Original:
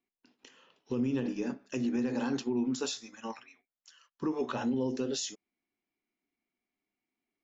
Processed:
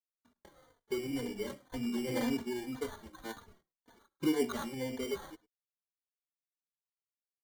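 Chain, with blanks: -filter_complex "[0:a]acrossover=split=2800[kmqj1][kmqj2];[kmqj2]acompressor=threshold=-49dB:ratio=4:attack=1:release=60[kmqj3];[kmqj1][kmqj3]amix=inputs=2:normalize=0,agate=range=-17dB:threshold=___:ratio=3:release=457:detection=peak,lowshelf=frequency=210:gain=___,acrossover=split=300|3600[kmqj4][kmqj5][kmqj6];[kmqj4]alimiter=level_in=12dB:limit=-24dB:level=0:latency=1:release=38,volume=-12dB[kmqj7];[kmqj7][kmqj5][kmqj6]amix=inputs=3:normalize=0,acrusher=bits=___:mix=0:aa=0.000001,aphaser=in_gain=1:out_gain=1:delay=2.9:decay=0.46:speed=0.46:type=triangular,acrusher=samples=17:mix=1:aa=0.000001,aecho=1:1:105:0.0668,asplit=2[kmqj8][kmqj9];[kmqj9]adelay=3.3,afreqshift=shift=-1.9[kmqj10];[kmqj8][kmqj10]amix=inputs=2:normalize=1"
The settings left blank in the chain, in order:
-59dB, 3, 11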